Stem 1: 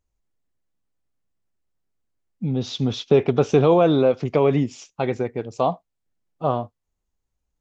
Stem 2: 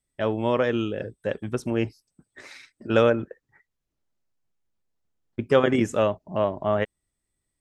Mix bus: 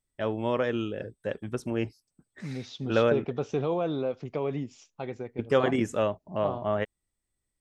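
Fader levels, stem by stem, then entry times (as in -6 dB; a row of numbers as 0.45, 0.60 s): -12.5, -4.5 dB; 0.00, 0.00 s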